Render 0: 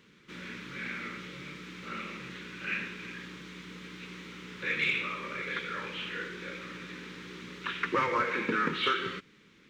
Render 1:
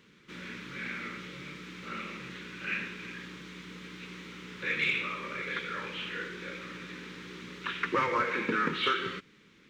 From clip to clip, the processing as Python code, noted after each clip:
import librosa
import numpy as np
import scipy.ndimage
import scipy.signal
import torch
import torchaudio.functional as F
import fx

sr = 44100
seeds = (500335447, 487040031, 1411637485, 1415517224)

y = x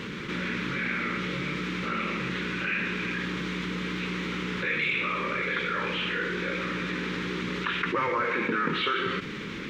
y = fx.high_shelf(x, sr, hz=5300.0, db=-11.5)
y = fx.env_flatten(y, sr, amount_pct=70)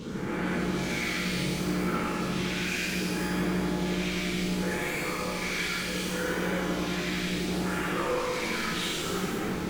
y = 10.0 ** (-32.0 / 20.0) * np.tanh(x / 10.0 ** (-32.0 / 20.0))
y = fx.phaser_stages(y, sr, stages=2, low_hz=710.0, high_hz=4200.0, hz=0.67, feedback_pct=25)
y = fx.rev_shimmer(y, sr, seeds[0], rt60_s=1.7, semitones=12, shimmer_db=-8, drr_db=-6.5)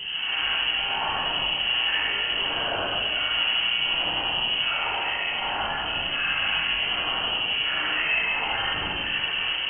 y = fx.doubler(x, sr, ms=40.0, db=-11.5)
y = fx.dmg_noise_colour(y, sr, seeds[1], colour='brown', level_db=-46.0)
y = fx.freq_invert(y, sr, carrier_hz=3100)
y = F.gain(torch.from_numpy(y), 3.5).numpy()